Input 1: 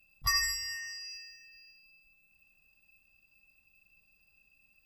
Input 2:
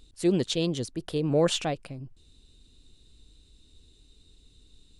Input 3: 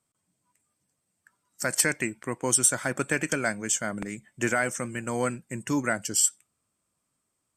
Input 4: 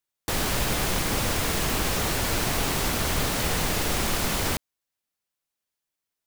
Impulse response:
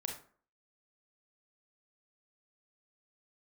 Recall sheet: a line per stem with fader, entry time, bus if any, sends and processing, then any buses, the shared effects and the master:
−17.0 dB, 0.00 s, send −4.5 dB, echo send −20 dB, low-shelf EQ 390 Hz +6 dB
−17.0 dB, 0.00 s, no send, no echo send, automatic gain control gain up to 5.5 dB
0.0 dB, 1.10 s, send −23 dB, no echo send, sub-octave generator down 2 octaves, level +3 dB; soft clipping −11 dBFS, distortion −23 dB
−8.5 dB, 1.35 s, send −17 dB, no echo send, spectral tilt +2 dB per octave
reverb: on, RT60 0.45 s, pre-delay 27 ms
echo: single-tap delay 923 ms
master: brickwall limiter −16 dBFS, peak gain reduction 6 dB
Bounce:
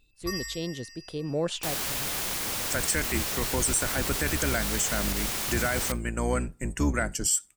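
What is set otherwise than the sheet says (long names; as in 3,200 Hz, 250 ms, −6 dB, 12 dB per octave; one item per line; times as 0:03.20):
stem 1 −17.0 dB → −10.5 dB
stem 2 −17.0 dB → −11.0 dB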